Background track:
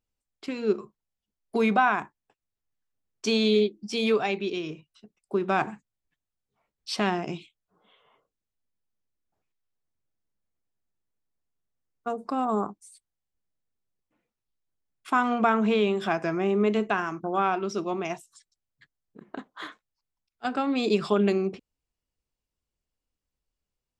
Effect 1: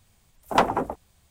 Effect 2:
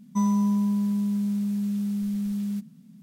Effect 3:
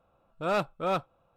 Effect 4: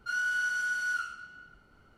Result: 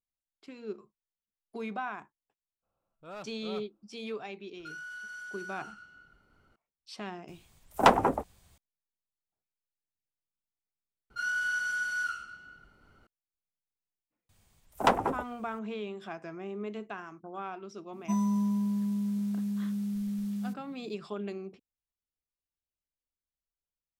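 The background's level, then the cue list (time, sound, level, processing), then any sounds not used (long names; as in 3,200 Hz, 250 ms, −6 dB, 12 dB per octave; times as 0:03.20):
background track −14.5 dB
0:02.62: mix in 3 −16.5 dB, fades 0.02 s
0:04.59: mix in 4 −5.5 dB + downward compressor 5 to 1, threshold −36 dBFS
0:07.28: mix in 1 −0.5 dB
0:11.10: overwrite with 4 −1 dB
0:14.29: mix in 1 −4.5 dB
0:17.93: mix in 2 −5.5 dB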